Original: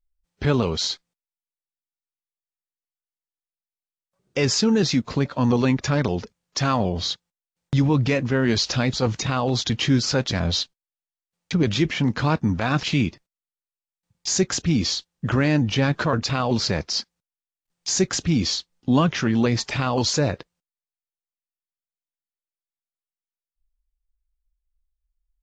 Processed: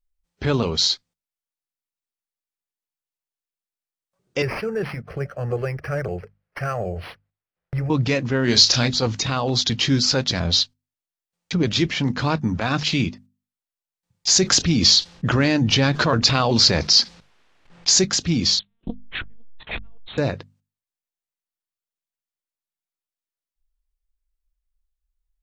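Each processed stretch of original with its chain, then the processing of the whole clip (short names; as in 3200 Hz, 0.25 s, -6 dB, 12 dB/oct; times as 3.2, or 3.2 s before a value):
4.42–7.9 fixed phaser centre 960 Hz, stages 6 + decimation joined by straight lines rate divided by 6×
8.44–8.88 high shelf 4900 Hz +7 dB + doubler 33 ms -7 dB
14.28–18.05 low-pass opened by the level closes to 2600 Hz, open at -18.5 dBFS + fast leveller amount 50%
18.59–20.18 bell 110 Hz +3 dB 0.59 oct + monotone LPC vocoder at 8 kHz 230 Hz + core saturation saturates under 260 Hz
whole clip: notches 50/100/150/200/250 Hz; dynamic EQ 4500 Hz, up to +7 dB, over -38 dBFS, Q 1.3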